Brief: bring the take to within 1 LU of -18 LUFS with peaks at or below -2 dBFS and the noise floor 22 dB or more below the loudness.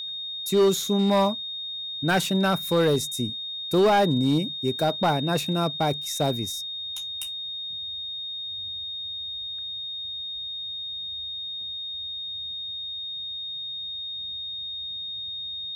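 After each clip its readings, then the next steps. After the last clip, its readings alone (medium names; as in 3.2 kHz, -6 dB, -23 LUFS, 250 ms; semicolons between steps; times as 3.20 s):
clipped samples 0.8%; clipping level -15.0 dBFS; steady tone 3.7 kHz; tone level -31 dBFS; loudness -26.5 LUFS; peak level -15.0 dBFS; loudness target -18.0 LUFS
-> clip repair -15 dBFS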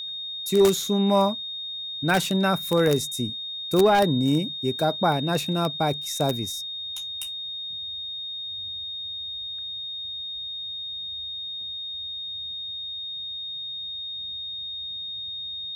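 clipped samples 0.0%; steady tone 3.7 kHz; tone level -31 dBFS
-> band-stop 3.7 kHz, Q 30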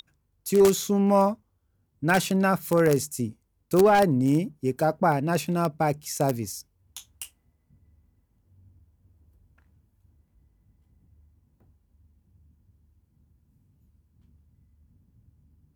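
steady tone not found; loudness -23.5 LUFS; peak level -5.5 dBFS; loudness target -18.0 LUFS
-> trim +5.5 dB; peak limiter -2 dBFS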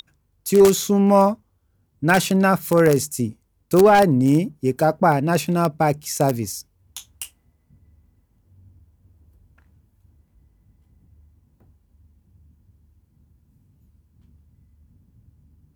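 loudness -18.5 LUFS; peak level -2.0 dBFS; noise floor -65 dBFS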